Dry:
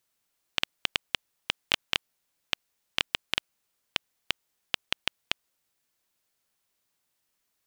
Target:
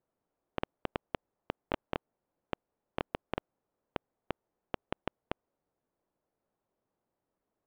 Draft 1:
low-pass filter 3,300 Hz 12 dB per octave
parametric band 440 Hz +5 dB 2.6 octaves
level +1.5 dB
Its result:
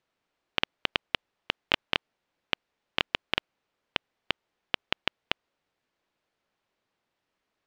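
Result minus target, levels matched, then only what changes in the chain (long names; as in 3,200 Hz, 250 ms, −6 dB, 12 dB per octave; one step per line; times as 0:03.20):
4,000 Hz band +9.5 dB
change: low-pass filter 840 Hz 12 dB per octave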